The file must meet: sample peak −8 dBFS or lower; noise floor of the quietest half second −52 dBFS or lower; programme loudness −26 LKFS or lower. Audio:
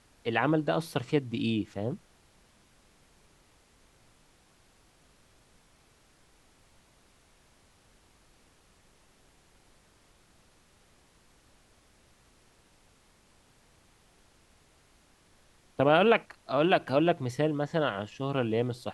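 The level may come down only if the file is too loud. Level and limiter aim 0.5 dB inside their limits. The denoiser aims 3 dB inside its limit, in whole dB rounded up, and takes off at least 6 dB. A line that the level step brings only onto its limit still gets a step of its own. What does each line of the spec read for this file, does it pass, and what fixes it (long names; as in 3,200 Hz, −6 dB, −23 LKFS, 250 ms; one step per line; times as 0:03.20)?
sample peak −9.5 dBFS: in spec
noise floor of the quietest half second −63 dBFS: in spec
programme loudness −28.0 LKFS: in spec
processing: no processing needed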